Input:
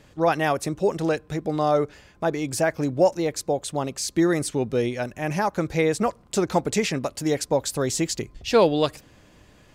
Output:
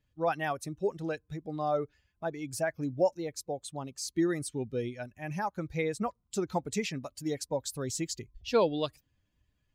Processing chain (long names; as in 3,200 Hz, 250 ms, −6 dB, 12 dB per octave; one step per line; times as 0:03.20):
spectral dynamics exaggerated over time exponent 1.5
level −6.5 dB